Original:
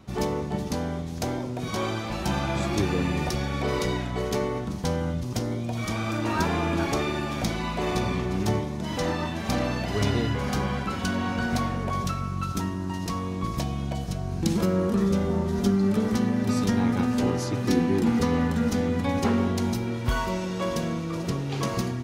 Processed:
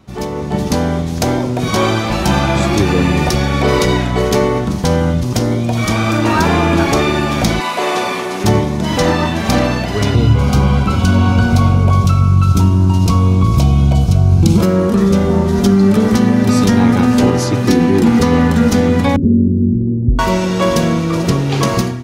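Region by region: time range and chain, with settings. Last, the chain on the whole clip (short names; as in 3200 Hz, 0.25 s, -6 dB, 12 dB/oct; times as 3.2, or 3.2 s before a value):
7.6–8.44 delta modulation 64 kbps, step -43 dBFS + HPF 450 Hz
10.14–14.62 Butterworth band-stop 1800 Hz, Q 3.9 + bell 90 Hz +12.5 dB 1.5 oct
19.16–20.19 inverse Chebyshev low-pass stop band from 850 Hz, stop band 50 dB + upward compressor, threshold -26 dBFS
whole clip: AGC; maximiser +4.5 dB; gain -1 dB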